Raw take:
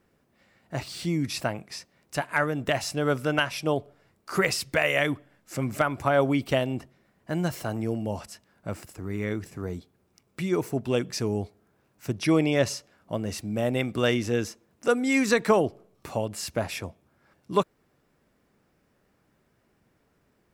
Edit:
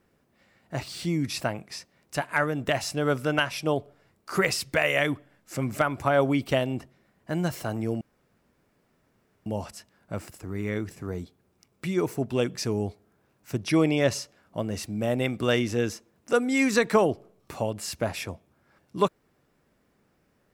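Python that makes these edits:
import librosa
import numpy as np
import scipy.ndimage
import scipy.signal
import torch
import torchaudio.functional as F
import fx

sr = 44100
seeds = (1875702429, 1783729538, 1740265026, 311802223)

y = fx.edit(x, sr, fx.insert_room_tone(at_s=8.01, length_s=1.45), tone=tone)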